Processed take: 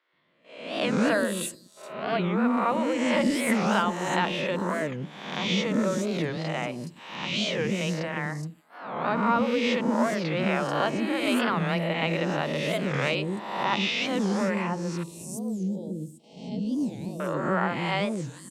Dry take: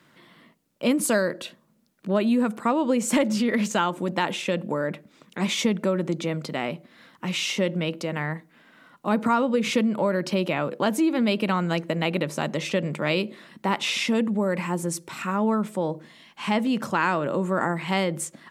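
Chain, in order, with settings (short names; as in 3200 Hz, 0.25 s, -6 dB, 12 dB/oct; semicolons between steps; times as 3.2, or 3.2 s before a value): spectral swells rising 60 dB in 1.00 s; 15.03–17.2 Chebyshev band-stop 320–6000 Hz, order 2; de-hum 107.8 Hz, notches 11; gate -41 dBFS, range -15 dB; high shelf 7800 Hz -10.5 dB; three bands offset in time mids, lows, highs 0.13/0.42 s, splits 410/6000 Hz; record warp 45 rpm, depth 250 cents; gain -2.5 dB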